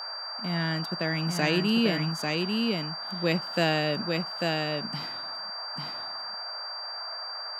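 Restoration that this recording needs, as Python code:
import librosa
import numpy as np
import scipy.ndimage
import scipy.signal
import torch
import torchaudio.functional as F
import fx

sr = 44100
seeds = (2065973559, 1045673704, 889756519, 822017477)

y = fx.notch(x, sr, hz=4700.0, q=30.0)
y = fx.noise_reduce(y, sr, print_start_s=6.5, print_end_s=7.0, reduce_db=30.0)
y = fx.fix_echo_inverse(y, sr, delay_ms=844, level_db=-3.5)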